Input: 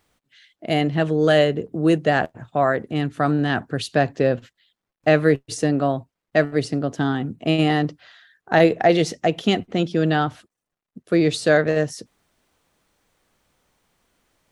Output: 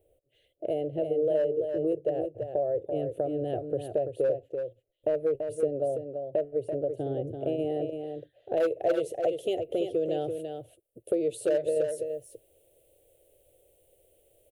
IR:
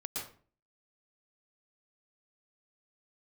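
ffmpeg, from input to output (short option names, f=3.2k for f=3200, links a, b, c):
-af "firequalizer=gain_entry='entry(120,0);entry(200,-23);entry(340,3);entry(550,13);entry(1000,-29);entry(1900,-20);entry(2800,-7);entry(5000,-22);entry(9600,3)':delay=0.05:min_phase=1,volume=3.5dB,asoftclip=hard,volume=-3.5dB,acompressor=threshold=-30dB:ratio=3,asetnsamples=n=441:p=0,asendcmd='8.57 highshelf g 5',highshelf=f=2k:g=-8.5,aecho=1:1:336:0.473"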